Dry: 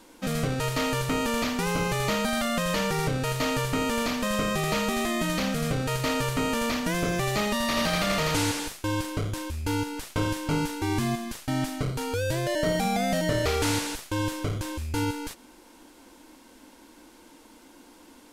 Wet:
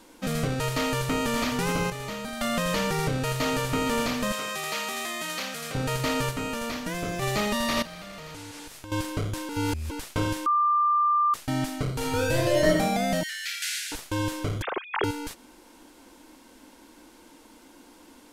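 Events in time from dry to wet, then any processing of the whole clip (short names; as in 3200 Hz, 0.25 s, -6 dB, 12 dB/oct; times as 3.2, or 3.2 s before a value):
0.66–1.13 echo throw 0.59 s, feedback 60%, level -8.5 dB
1.9–2.41 gain -8.5 dB
2.99–3.59 echo throw 0.46 s, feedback 80%, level -12 dB
4.32–5.75 HPF 1200 Hz 6 dB/oct
6.31–7.22 resonator 100 Hz, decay 0.17 s
7.82–8.92 compressor, threshold -39 dBFS
9.49–9.91 reverse
10.46–11.34 bleep 1190 Hz -19 dBFS
11.94–12.68 reverb throw, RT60 0.85 s, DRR -2 dB
13.23–13.92 steep high-pass 1500 Hz 96 dB/oct
14.62–15.04 sine-wave speech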